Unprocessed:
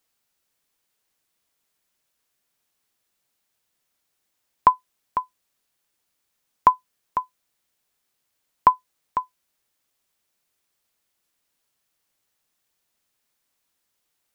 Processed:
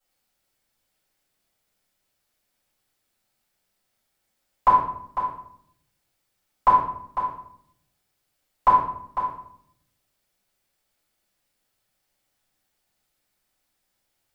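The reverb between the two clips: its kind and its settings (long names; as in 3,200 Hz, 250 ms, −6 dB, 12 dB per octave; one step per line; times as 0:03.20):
rectangular room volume 140 cubic metres, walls mixed, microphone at 5.5 metres
level −14 dB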